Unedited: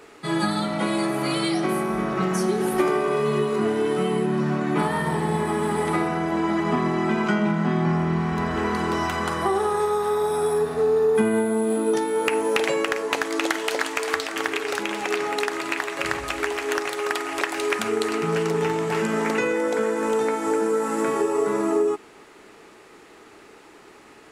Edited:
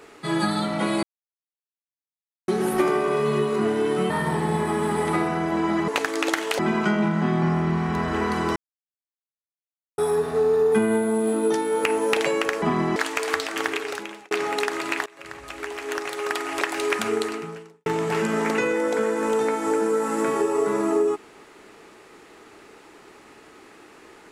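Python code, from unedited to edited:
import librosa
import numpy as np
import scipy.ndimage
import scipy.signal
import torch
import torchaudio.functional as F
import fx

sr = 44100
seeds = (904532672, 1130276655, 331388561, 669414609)

y = fx.edit(x, sr, fx.silence(start_s=1.03, length_s=1.45),
    fx.cut(start_s=4.1, length_s=0.8),
    fx.swap(start_s=6.68, length_s=0.34, other_s=13.05, other_length_s=0.71),
    fx.silence(start_s=8.99, length_s=1.42),
    fx.fade_out_span(start_s=14.49, length_s=0.62),
    fx.fade_in_from(start_s=15.86, length_s=1.46, floor_db=-23.0),
    fx.fade_out_span(start_s=17.96, length_s=0.7, curve='qua'), tone=tone)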